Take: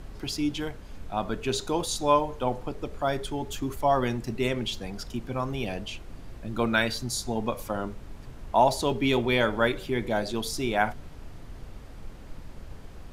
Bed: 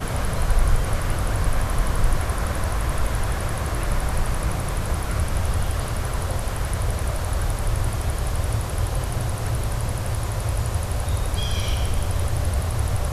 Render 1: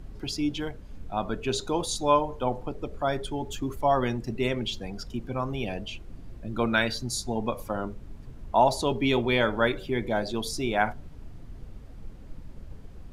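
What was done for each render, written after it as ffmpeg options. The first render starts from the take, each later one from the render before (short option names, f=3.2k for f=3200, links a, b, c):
-af "afftdn=nr=8:nf=-44"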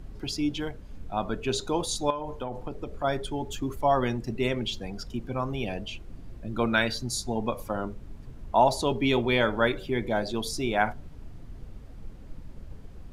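-filter_complex "[0:a]asettb=1/sr,asplit=3[a][b][c];[a]atrim=end=2.104[d];[b]atrim=start=2.1:end=3.04,asetpts=PTS-STARTPTS,afade=t=in:d=0.004:c=qsin,afade=t=out:st=0.936:d=0.004:c=qsin,acompressor=threshold=-28dB:ratio=8:attack=3.2:release=140:knee=1:detection=peak[e];[c]atrim=start=3.036[f];[d][e]acrossfade=d=0.004:c1=hsin:c2=qsin[g];[g][f]acrossfade=d=0.004:c1=qsin:c2=hsin"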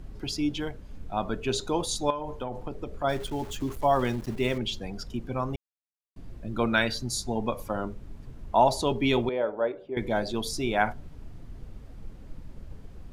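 -filter_complex "[0:a]asettb=1/sr,asplit=3[a][b][c];[a]atrim=end=3.094[d];[b]atrim=start=3.09:end=4.58,asetpts=PTS-STARTPTS,afade=t=in:d=0.004:c=qsin,afade=t=out:st=1.486:d=0.004:c=qsin,aeval=exprs='val(0)*gte(abs(val(0)),0.00891)':c=same[e];[c]atrim=start=4.576[f];[d][e]acrossfade=d=0.004:c1=hsin:c2=qsin[g];[g][f]acrossfade=d=0.004:c1=qsin:c2=hsin,asettb=1/sr,asplit=3[h][i][j];[h]atrim=end=9.294[k];[i]atrim=start=9.29:end=9.97,asetpts=PTS-STARTPTS,afade=t=in:d=0.004:c=qsin,afade=t=out:st=0.676:d=0.004:c=qsin,bandpass=f=560:t=q:w=1.8[l];[j]atrim=start=9.966[m];[k][l]acrossfade=d=0.004:c1=hsin:c2=qsin[n];[n][m]acrossfade=d=0.004:c1=qsin:c2=hsin,asplit=3[o][p][q];[o]atrim=end=5.56,asetpts=PTS-STARTPTS,afade=t=out:st=5.556:d=0.004:c=hsin[r];[p]atrim=start=5.56:end=6.16,asetpts=PTS-STARTPTS,volume=0[s];[q]atrim=start=6.16,asetpts=PTS-STARTPTS,afade=t=in:d=0.004:c=hsin[t];[r][s][t]concat=n=3:v=0:a=1"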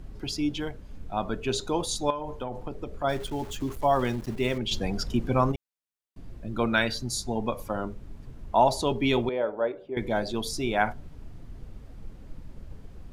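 -filter_complex "[0:a]asettb=1/sr,asplit=3[a][b][c];[a]atrim=end=4.714[d];[b]atrim=start=4.71:end=5.52,asetpts=PTS-STARTPTS,afade=t=in:d=0.004:c=qsin,afade=t=out:st=0.806:d=0.004:c=qsin,acontrast=87[e];[c]atrim=start=5.516[f];[d][e]acrossfade=d=0.004:c1=hsin:c2=qsin[g];[g][f]acrossfade=d=0.004:c1=qsin:c2=hsin"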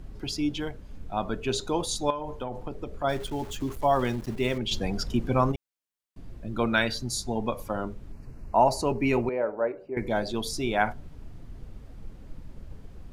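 -filter_complex "[0:a]asettb=1/sr,asplit=3[a][b][c];[a]atrim=end=8.124[d];[b]atrim=start=8.12:end=10.08,asetpts=PTS-STARTPTS,afade=t=in:d=0.004:c=qsin,afade=t=out:st=1.956:d=0.004:c=qsin,asuperstop=centerf=3400:order=4:qfactor=2.6[e];[c]atrim=start=10.076[f];[d][e]acrossfade=d=0.004:c1=hsin:c2=qsin[g];[g][f]acrossfade=d=0.004:c1=qsin:c2=hsin"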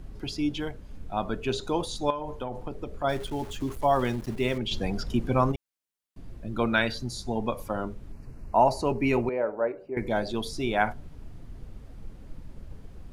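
-filter_complex "[0:a]acrossover=split=4300[a][b];[b]acompressor=threshold=-43dB:ratio=4:attack=1:release=60[c];[a][c]amix=inputs=2:normalize=0,equalizer=f=9.9k:t=o:w=0.22:g=3"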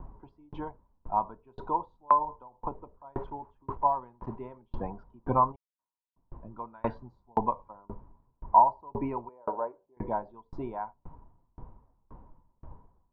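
-af "lowpass=f=970:t=q:w=12,aeval=exprs='val(0)*pow(10,-37*if(lt(mod(1.9*n/s,1),2*abs(1.9)/1000),1-mod(1.9*n/s,1)/(2*abs(1.9)/1000),(mod(1.9*n/s,1)-2*abs(1.9)/1000)/(1-2*abs(1.9)/1000))/20)':c=same"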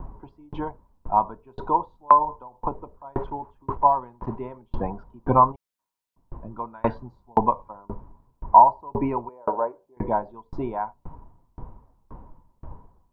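-af "volume=7.5dB,alimiter=limit=-1dB:level=0:latency=1"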